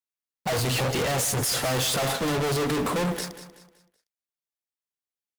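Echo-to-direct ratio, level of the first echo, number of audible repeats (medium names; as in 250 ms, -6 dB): -12.5 dB, -13.0 dB, 3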